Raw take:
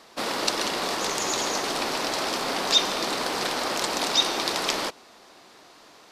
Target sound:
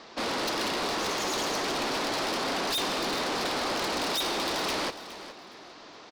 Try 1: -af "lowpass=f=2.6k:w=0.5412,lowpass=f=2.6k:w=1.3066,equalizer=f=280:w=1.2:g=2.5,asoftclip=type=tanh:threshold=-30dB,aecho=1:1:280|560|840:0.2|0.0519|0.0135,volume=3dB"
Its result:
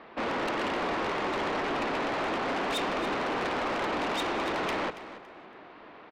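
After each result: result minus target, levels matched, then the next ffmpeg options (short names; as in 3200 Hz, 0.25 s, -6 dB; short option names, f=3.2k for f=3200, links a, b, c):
8000 Hz band -12.0 dB; echo 0.135 s early
-af "lowpass=f=5.9k:w=0.5412,lowpass=f=5.9k:w=1.3066,equalizer=f=280:w=1.2:g=2.5,asoftclip=type=tanh:threshold=-30dB,aecho=1:1:280|560|840:0.2|0.0519|0.0135,volume=3dB"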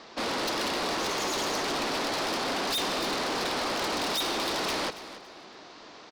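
echo 0.135 s early
-af "lowpass=f=5.9k:w=0.5412,lowpass=f=5.9k:w=1.3066,equalizer=f=280:w=1.2:g=2.5,asoftclip=type=tanh:threshold=-30dB,aecho=1:1:415|830|1245:0.2|0.0519|0.0135,volume=3dB"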